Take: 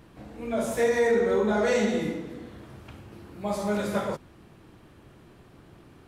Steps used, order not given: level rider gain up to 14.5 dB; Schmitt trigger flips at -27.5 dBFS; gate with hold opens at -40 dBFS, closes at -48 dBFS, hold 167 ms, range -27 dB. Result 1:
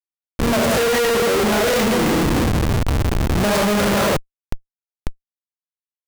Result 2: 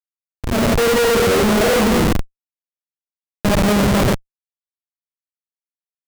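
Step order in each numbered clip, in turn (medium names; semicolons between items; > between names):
level rider > gate with hold > Schmitt trigger; gate with hold > Schmitt trigger > level rider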